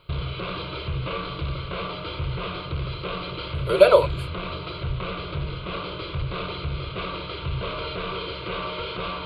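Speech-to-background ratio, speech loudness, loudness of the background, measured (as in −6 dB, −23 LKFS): 13.0 dB, −17.5 LKFS, −30.5 LKFS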